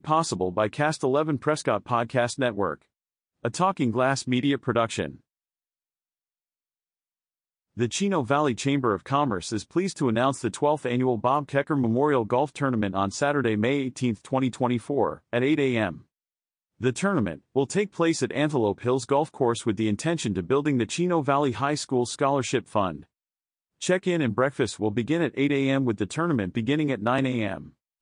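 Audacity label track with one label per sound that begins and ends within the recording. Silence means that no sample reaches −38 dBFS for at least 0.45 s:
3.450000	5.150000	sound
7.770000	15.980000	sound
16.810000	23.020000	sound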